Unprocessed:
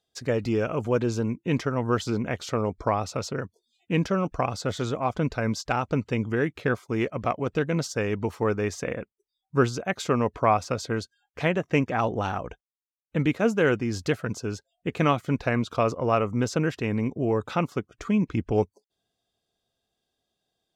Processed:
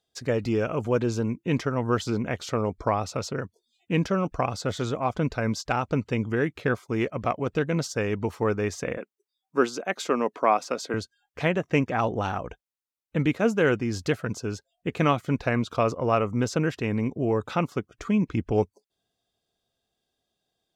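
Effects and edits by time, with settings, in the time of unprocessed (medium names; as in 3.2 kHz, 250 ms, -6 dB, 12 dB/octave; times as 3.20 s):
8.97–10.94 s: high-pass 230 Hz 24 dB/octave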